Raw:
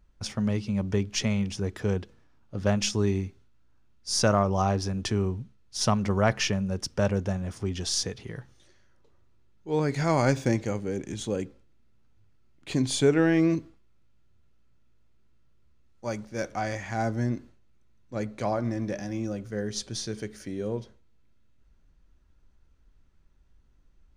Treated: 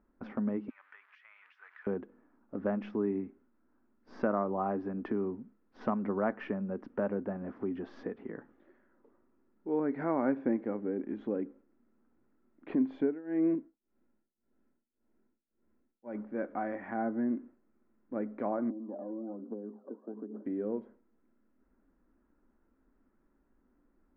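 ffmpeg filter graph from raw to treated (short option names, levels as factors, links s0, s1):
-filter_complex "[0:a]asettb=1/sr,asplit=3[s0][s1][s2];[s0]atrim=end=0.694[s3];[s1]atrim=start=0.69:end=1.87,asetpts=PTS-STARTPTS,afade=t=in:d=0.004:c=qsin,afade=t=out:st=1.176:d=0.004:c=qsin,aeval=exprs='val(0)+0.5*0.0106*sgn(val(0))':c=same,highpass=f=1500:w=0.5412,highpass=f=1500:w=1.3066,acompressor=threshold=0.00708:ratio=6:attack=3.2:release=140:knee=1:detection=peak[s4];[s2]atrim=start=1.866[s5];[s3][s4]acrossfade=d=0.004:c1=hsin:c2=qsin[s6];[s6][s5]acrossfade=d=0.004:c1=qsin:c2=hsin,asettb=1/sr,asplit=3[s7][s8][s9];[s7]atrim=end=12.954[s10];[s8]atrim=start=12.95:end=16.15,asetpts=PTS-STARTPTS,afade=t=in:d=0.004:c=qsin,afade=t=out:st=3.196:d=0.004:c=qsin,tremolo=f=1.8:d=0.94,bandreject=f=1200:w=5.3[s11];[s9]atrim=start=16.146[s12];[s10][s11]acrossfade=d=0.004:c1=hsin:c2=qsin[s13];[s13][s12]acrossfade=d=0.004:c1=qsin:c2=hsin,asettb=1/sr,asplit=3[s14][s15][s16];[s14]atrim=end=18.704[s17];[s15]atrim=start=18.7:end=20.46,asetpts=PTS-STARTPTS,afade=t=in:d=0.004:c=qsin,afade=t=out:st=1.756:d=0.004:c=qsin,aphaser=in_gain=1:out_gain=1:delay=2.2:decay=0.71:speed=1.2:type=triangular,acompressor=threshold=0.02:ratio=6:attack=3.2:release=140:knee=1:detection=peak,asuperpass=centerf=500:order=12:qfactor=0.52[s18];[s16]atrim=start=20.456[s19];[s17][s18]acrossfade=d=0.004:c1=hsin:c2=qsin[s20];[s20][s19]acrossfade=d=0.004:c1=qsin:c2=hsin,lowpass=f=1700:w=0.5412,lowpass=f=1700:w=1.3066,lowshelf=f=170:t=q:w=3:g=-13.5,acompressor=threshold=0.00891:ratio=1.5"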